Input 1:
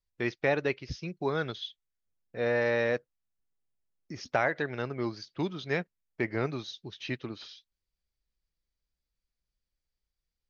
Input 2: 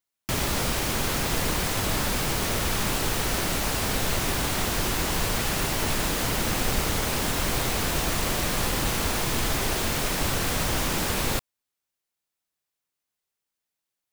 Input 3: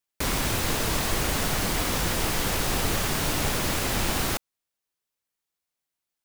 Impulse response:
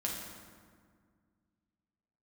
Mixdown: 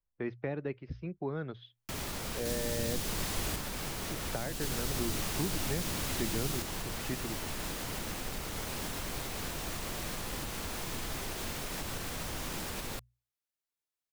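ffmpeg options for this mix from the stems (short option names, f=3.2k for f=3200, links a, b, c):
-filter_complex "[0:a]lowpass=1.5k,volume=-1.5dB[a];[1:a]alimiter=limit=-18dB:level=0:latency=1:release=203,adelay=1600,volume=-9dB[b];[2:a]adelay=2250,volume=-9.5dB,asplit=3[c][d][e];[c]atrim=end=3.56,asetpts=PTS-STARTPTS,afade=t=out:st=3.556:d=0.004:c=hsin[f];[d]atrim=start=3.56:end=4.61,asetpts=PTS-STARTPTS,volume=0[g];[e]atrim=start=4.61,asetpts=PTS-STARTPTS,afade=t=in:d=0.004:c=hsin[h];[f][g][h]concat=n=3:v=0:a=1[i];[a][b][i]amix=inputs=3:normalize=0,bandreject=f=60:t=h:w=6,bandreject=f=120:t=h:w=6,acrossover=split=320|3000[j][k][l];[k]acompressor=threshold=-39dB:ratio=6[m];[j][m][l]amix=inputs=3:normalize=0"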